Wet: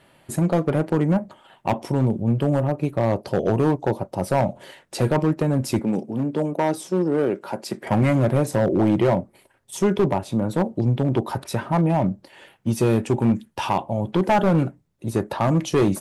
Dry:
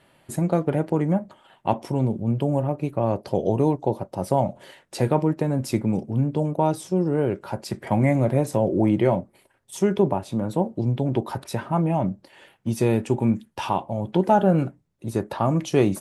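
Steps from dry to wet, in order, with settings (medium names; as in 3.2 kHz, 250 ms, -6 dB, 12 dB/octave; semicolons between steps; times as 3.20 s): overload inside the chain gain 16 dB; 5.79–7.87 s: Chebyshev high-pass 240 Hz, order 2; trim +3 dB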